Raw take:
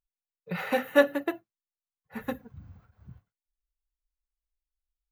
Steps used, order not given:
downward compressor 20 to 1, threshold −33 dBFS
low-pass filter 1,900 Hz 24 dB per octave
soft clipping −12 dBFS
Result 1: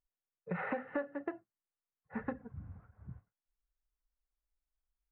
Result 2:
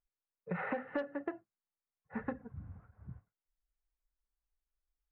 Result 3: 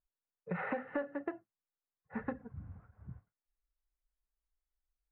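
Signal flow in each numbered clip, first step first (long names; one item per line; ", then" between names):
low-pass filter, then downward compressor, then soft clipping
low-pass filter, then soft clipping, then downward compressor
soft clipping, then low-pass filter, then downward compressor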